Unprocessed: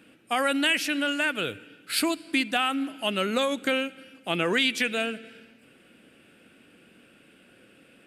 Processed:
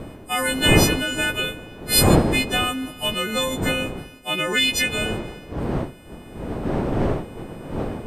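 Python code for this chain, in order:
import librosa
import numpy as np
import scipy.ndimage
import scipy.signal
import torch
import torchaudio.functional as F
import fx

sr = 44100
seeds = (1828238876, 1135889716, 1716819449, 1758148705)

y = fx.freq_snap(x, sr, grid_st=3)
y = fx.dmg_wind(y, sr, seeds[0], corner_hz=390.0, level_db=-25.0)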